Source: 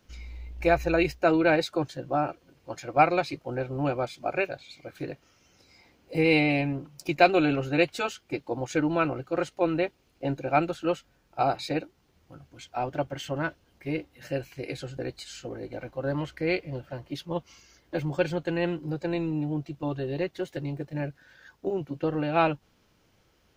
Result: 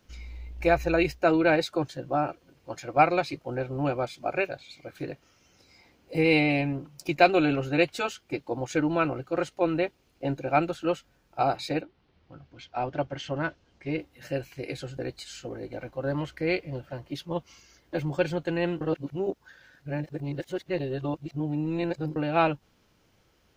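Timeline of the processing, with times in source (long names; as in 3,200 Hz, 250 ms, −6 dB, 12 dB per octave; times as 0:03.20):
0:11.80–0:13.97: low-pass filter 4,000 Hz → 7,500 Hz 24 dB per octave
0:18.81–0:22.16: reverse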